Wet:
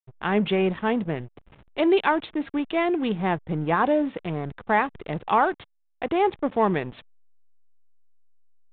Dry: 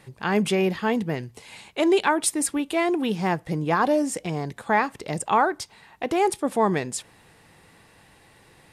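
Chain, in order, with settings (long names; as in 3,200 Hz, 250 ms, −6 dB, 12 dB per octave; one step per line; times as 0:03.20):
slack as between gear wheels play −31.5 dBFS
downsampling to 8,000 Hz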